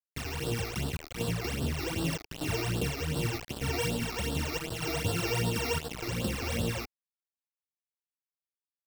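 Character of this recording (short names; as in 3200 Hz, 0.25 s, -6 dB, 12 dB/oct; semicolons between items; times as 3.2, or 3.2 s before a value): a buzz of ramps at a fixed pitch in blocks of 16 samples; chopped level 0.83 Hz, depth 60%, duty 80%; a quantiser's noise floor 6-bit, dither none; phasing stages 12, 2.6 Hz, lowest notch 160–2200 Hz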